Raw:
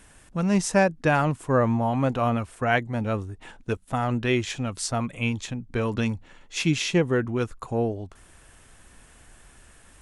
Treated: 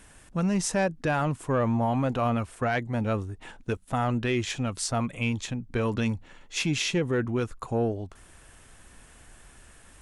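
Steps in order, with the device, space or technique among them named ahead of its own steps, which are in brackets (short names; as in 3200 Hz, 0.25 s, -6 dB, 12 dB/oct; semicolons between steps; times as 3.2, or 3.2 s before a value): soft clipper into limiter (soft clip -12 dBFS, distortion -22 dB; limiter -18 dBFS, peak gain reduction 5 dB)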